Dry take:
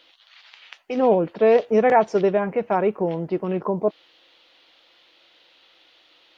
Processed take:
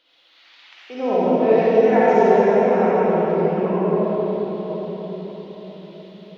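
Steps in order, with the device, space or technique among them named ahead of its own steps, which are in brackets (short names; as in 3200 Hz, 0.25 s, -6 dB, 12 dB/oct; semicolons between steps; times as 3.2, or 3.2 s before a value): cathedral (reverb RT60 5.2 s, pre-delay 44 ms, DRR -11.5 dB); 1.66–2.67 notch 1200 Hz, Q 7.7; gain -9 dB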